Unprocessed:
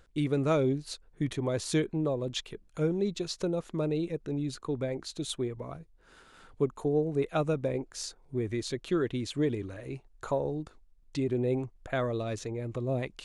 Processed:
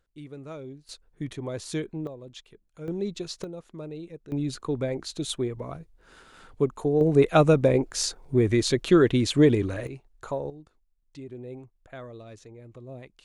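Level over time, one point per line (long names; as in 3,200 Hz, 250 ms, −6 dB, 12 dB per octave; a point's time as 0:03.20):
−13.5 dB
from 0:00.89 −3 dB
from 0:02.07 −10.5 dB
from 0:02.88 −0.5 dB
from 0:03.44 −8 dB
from 0:04.32 +4 dB
from 0:07.01 +10.5 dB
from 0:09.87 −1 dB
from 0:10.50 −11 dB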